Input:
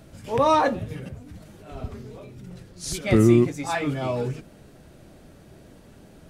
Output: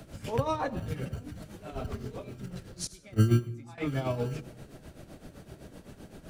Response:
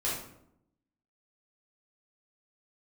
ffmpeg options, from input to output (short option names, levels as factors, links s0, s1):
-filter_complex "[0:a]tremolo=f=7.8:d=0.71,acrossover=split=160[s0][s1];[s1]acompressor=threshold=0.02:ratio=4[s2];[s0][s2]amix=inputs=2:normalize=0,acrossover=split=140[s3][s4];[s3]acrusher=samples=30:mix=1:aa=0.000001[s5];[s5][s4]amix=inputs=2:normalize=0,asettb=1/sr,asplit=3[s6][s7][s8];[s6]atrim=end=2.874[s9];[s7]atrim=start=2.87:end=3.78,asetpts=PTS-STARTPTS,afade=t=in:d=0.004:c=qsin,afade=t=out:st=0.906:d=0.004:c=qsin,agate=range=0.1:threshold=0.0501:ratio=16:detection=peak[s10];[s8]atrim=start=3.776[s11];[s9][s10]acrossfade=d=0.004:c1=hsin:c2=qsin[s12];[s12][s11]acrossfade=d=0.004:c1=qsin:c2=hsin,asplit=2[s13][s14];[1:a]atrim=start_sample=2205,adelay=73[s15];[s14][s15]afir=irnorm=-1:irlink=0,volume=0.0596[s16];[s13][s16]amix=inputs=2:normalize=0,volume=1.5"